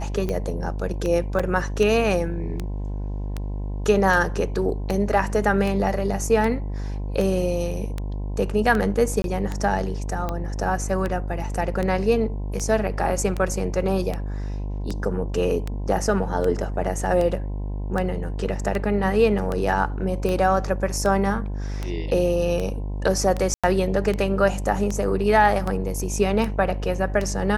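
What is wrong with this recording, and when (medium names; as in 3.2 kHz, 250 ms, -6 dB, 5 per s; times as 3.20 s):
buzz 50 Hz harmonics 21 -28 dBFS
tick 78 rpm -14 dBFS
1.39–1.40 s: dropout 5.5 ms
9.22–9.24 s: dropout 22 ms
23.54–23.64 s: dropout 96 ms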